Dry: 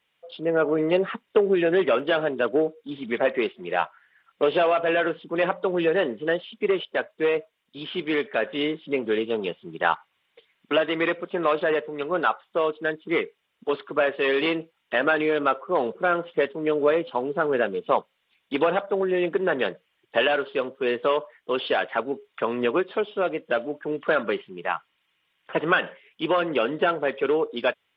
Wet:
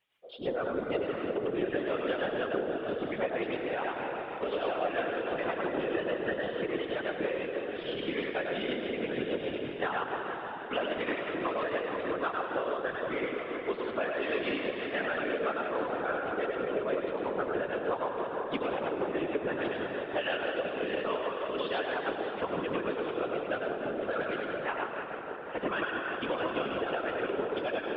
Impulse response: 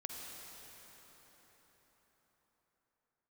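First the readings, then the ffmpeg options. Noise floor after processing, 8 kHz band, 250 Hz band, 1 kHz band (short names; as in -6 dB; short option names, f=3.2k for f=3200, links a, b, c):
-40 dBFS, n/a, -7.0 dB, -7.0 dB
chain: -filter_complex "[0:a]asplit=2[a][b];[1:a]atrim=start_sample=2205,lowshelf=f=150:g=-4,adelay=101[c];[b][c]afir=irnorm=-1:irlink=0,volume=2.5dB[d];[a][d]amix=inputs=2:normalize=0,afftfilt=real='hypot(re,im)*cos(2*PI*random(0))':imag='hypot(re,im)*sin(2*PI*random(1))':win_size=512:overlap=0.75,acompressor=threshold=-28dB:ratio=3,tremolo=f=6.2:d=0.33"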